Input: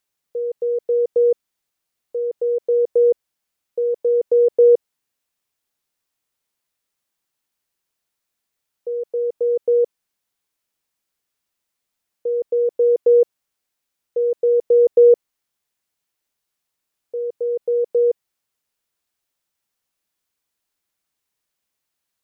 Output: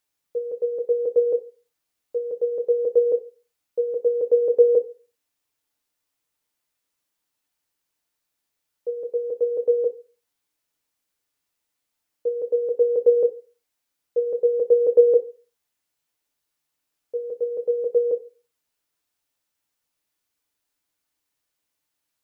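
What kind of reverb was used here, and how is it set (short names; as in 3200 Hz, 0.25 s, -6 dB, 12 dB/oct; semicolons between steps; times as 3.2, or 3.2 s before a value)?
FDN reverb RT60 0.36 s, low-frequency decay 0.9×, high-frequency decay 0.85×, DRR 5 dB; gain -1.5 dB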